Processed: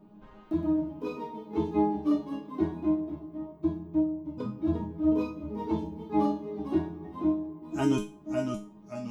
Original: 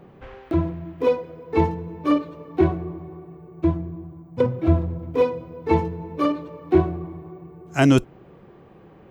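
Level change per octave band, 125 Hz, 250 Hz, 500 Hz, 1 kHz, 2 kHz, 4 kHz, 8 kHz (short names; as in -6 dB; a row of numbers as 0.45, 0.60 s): -13.0 dB, -3.5 dB, -10.5 dB, -7.5 dB, under -10 dB, under -10 dB, n/a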